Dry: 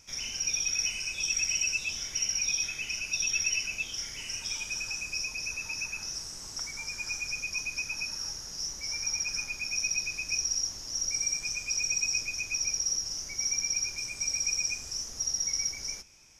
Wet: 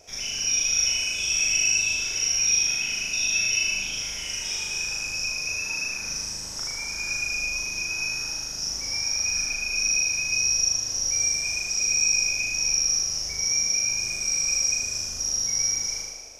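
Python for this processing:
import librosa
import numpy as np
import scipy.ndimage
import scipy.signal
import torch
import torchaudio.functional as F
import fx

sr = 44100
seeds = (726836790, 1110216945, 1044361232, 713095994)

p1 = x + fx.room_flutter(x, sr, wall_m=6.6, rt60_s=1.4, dry=0)
p2 = fx.dmg_noise_band(p1, sr, seeds[0], low_hz=370.0, high_hz=760.0, level_db=-59.0)
y = p2 * librosa.db_to_amplitude(1.5)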